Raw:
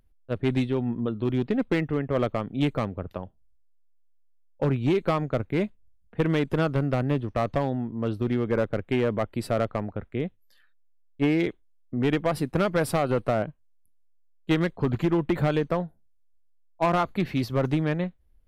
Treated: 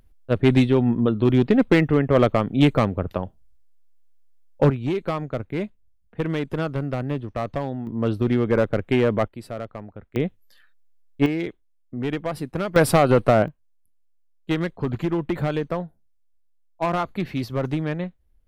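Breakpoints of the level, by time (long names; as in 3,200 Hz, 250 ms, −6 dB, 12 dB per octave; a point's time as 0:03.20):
+8 dB
from 0:04.70 −1.5 dB
from 0:07.87 +5 dB
from 0:09.28 −7 dB
from 0:10.16 +5.5 dB
from 0:11.26 −2.5 dB
from 0:12.76 +8 dB
from 0:13.48 −0.5 dB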